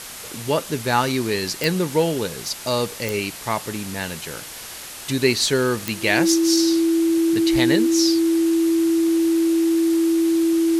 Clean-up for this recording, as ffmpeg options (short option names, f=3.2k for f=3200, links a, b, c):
-af "adeclick=t=4,bandreject=f=330:w=30,afwtdn=0.02"